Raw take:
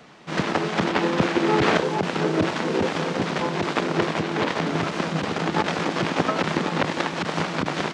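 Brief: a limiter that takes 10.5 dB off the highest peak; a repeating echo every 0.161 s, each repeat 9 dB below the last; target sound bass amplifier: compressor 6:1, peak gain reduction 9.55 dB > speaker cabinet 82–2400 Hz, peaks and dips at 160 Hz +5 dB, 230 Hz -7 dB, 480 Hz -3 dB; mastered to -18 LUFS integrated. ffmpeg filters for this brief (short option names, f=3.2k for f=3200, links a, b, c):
-af "alimiter=limit=-14.5dB:level=0:latency=1,aecho=1:1:161|322|483|644:0.355|0.124|0.0435|0.0152,acompressor=threshold=-29dB:ratio=6,highpass=f=82:w=0.5412,highpass=f=82:w=1.3066,equalizer=f=160:t=q:w=4:g=5,equalizer=f=230:t=q:w=4:g=-7,equalizer=f=480:t=q:w=4:g=-3,lowpass=f=2.4k:w=0.5412,lowpass=f=2.4k:w=1.3066,volume=15.5dB"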